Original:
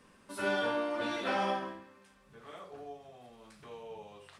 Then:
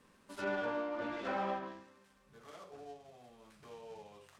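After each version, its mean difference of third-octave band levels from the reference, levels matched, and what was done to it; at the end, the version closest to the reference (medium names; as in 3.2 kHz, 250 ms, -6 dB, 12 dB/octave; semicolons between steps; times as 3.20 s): 2.0 dB: dead-time distortion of 0.12 ms; low-pass that closes with the level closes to 2.3 kHz, closed at -31 dBFS; trim -4 dB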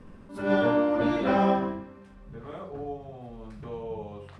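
6.0 dB: tilt EQ -4 dB/octave; attacks held to a fixed rise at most 110 dB/s; trim +6 dB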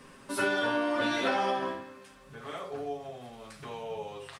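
3.5 dB: comb 7.4 ms, depth 47%; compression 10:1, threshold -33 dBFS, peak gain reduction 7.5 dB; trim +8.5 dB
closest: first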